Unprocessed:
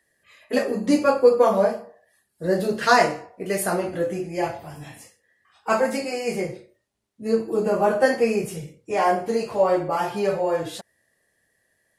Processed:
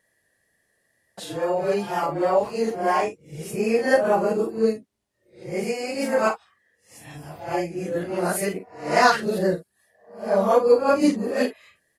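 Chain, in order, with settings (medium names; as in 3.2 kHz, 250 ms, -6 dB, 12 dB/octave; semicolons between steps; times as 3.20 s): reverse the whole clip; wow and flutter 16 cents; early reflections 40 ms -9 dB, 51 ms -15 dB; trim -1 dB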